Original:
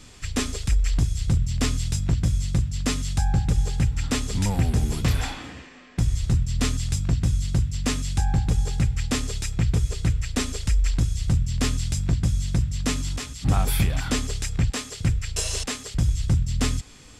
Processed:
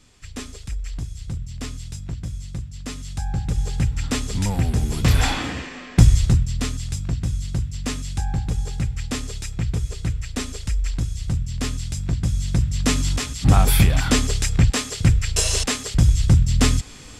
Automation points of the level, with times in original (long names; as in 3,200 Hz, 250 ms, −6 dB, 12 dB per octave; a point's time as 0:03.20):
0:02.85 −8 dB
0:03.79 +1 dB
0:04.90 +1 dB
0:05.36 +11 dB
0:06.02 +11 dB
0:06.66 −2 dB
0:11.94 −2 dB
0:13.06 +6.5 dB